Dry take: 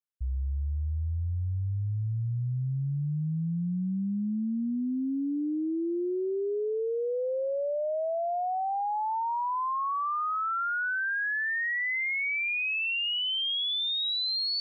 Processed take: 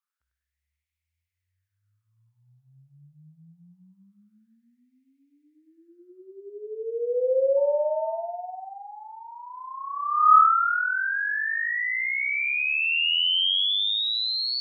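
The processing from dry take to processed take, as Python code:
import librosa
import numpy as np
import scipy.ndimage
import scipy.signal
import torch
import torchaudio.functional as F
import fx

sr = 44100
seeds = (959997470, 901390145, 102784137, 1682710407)

y = fx.dmg_tone(x, sr, hz=900.0, level_db=-48.0, at=(7.56, 8.68), fade=0.02)
y = fx.echo_feedback(y, sr, ms=98, feedback_pct=43, wet_db=-5.0)
y = fx.filter_lfo_highpass(y, sr, shape='sine', hz=0.24, low_hz=620.0, high_hz=2200.0, q=6.1)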